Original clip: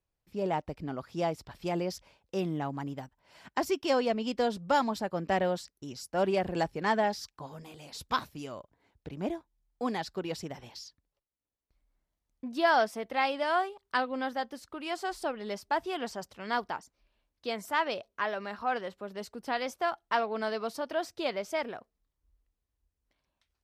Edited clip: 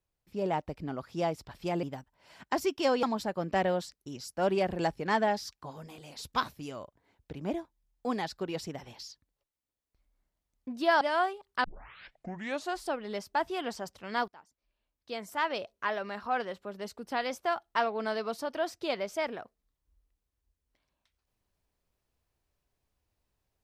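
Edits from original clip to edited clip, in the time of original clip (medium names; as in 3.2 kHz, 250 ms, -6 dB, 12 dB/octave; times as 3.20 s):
1.83–2.88 s: delete
4.08–4.79 s: delete
12.77–13.37 s: delete
14.00 s: tape start 1.12 s
16.64–18.05 s: fade in, from -23.5 dB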